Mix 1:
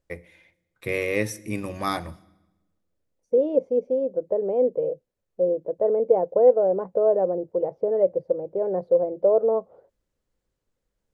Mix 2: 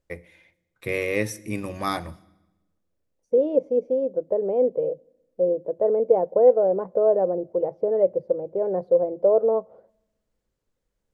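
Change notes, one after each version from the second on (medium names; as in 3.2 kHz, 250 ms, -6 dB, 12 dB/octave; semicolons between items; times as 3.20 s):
second voice: send on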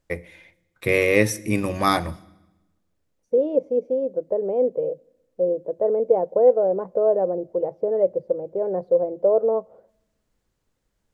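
first voice +7.0 dB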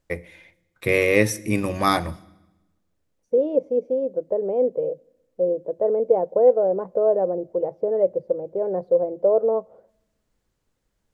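no change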